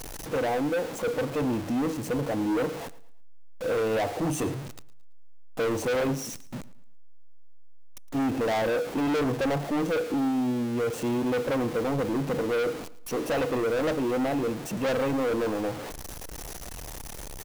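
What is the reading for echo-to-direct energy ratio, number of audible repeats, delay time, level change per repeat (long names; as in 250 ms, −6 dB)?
−18.5 dB, 2, 111 ms, −9.5 dB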